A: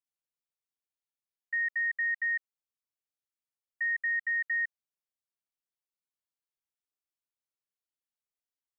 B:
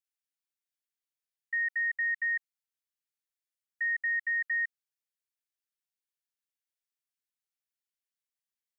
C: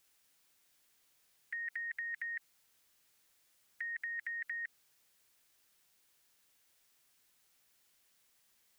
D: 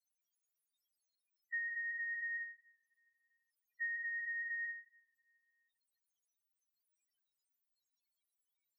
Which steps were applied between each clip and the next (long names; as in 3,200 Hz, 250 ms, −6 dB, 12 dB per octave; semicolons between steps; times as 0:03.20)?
Chebyshev high-pass filter 1,600 Hz, order 3
brickwall limiter −34 dBFS, peak gain reduction 8 dB; every bin compressed towards the loudest bin 2 to 1; level +4.5 dB
coupled-rooms reverb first 0.47 s, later 2.5 s, from −27 dB, DRR 0.5 dB; spectral peaks only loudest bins 2; level +1.5 dB